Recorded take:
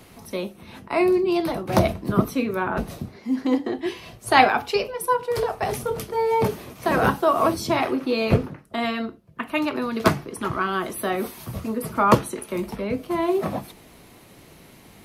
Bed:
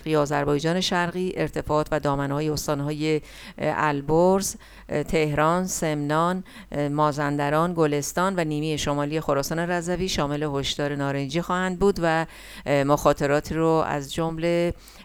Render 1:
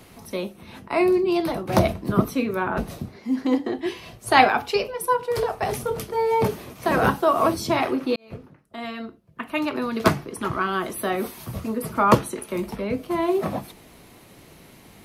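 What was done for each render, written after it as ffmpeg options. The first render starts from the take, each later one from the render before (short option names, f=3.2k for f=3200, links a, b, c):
-filter_complex "[0:a]asplit=2[a][b];[a]atrim=end=8.16,asetpts=PTS-STARTPTS,afade=t=out:st=8.156:d=0.004:c=hsin[c];[b]atrim=start=8.16,asetpts=PTS-STARTPTS,afade=t=in:d=1.68[d];[c][d]concat=n=2:v=0:a=1"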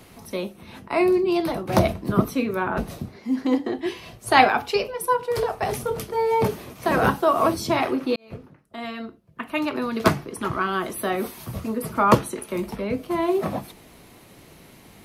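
-af anull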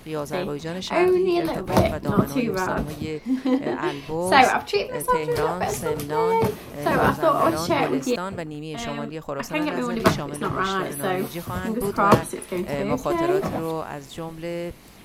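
-filter_complex "[1:a]volume=-7.5dB[a];[0:a][a]amix=inputs=2:normalize=0"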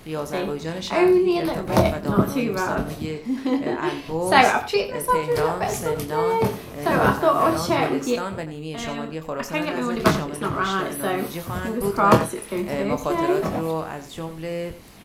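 -filter_complex "[0:a]asplit=2[a][b];[b]adelay=25,volume=-8dB[c];[a][c]amix=inputs=2:normalize=0,aecho=1:1:88:0.211"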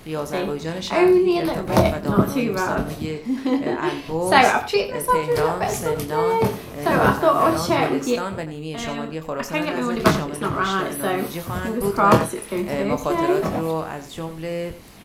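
-af "volume=1.5dB,alimiter=limit=-2dB:level=0:latency=1"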